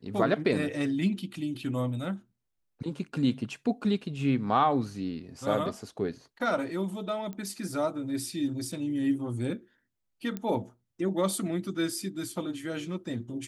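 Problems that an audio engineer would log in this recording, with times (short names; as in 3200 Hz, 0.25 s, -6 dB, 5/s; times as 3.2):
7.33 pop -27 dBFS
10.37 pop -21 dBFS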